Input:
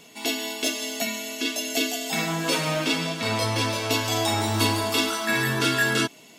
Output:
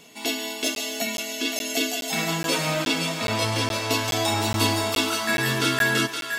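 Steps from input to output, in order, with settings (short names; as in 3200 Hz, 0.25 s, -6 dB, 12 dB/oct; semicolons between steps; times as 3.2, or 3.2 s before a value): thinning echo 0.518 s, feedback 39%, high-pass 840 Hz, level -6 dB; crackling interface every 0.42 s, samples 512, zero, from 0.75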